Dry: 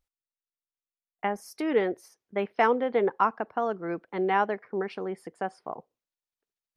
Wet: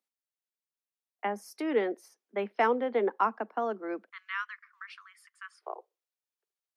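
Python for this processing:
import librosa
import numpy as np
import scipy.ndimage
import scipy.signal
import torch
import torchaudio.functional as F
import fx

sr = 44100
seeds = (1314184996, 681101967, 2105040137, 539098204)

y = fx.steep_highpass(x, sr, hz=fx.steps((0.0, 200.0), (4.09, 1100.0), (5.61, 340.0)), slope=96)
y = y * librosa.db_to_amplitude(-3.0)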